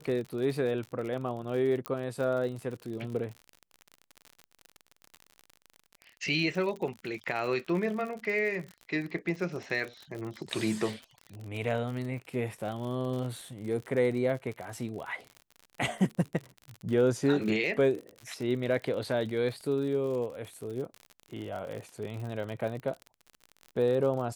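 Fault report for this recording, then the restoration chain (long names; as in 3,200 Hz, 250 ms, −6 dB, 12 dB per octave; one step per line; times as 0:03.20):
surface crackle 52 per second −36 dBFS
0:01.86: click −17 dBFS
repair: click removal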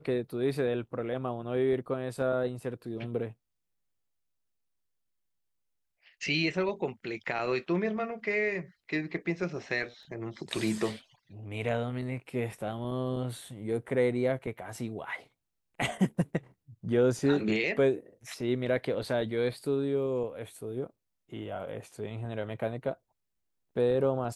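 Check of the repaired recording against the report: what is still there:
none of them is left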